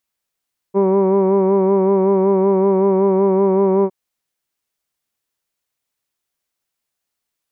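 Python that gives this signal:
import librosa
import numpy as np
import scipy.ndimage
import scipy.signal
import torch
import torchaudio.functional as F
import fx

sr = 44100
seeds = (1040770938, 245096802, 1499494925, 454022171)

y = fx.vowel(sr, seeds[0], length_s=3.16, word='hood', hz=193.0, glide_st=0.0, vibrato_hz=5.3, vibrato_st=0.45)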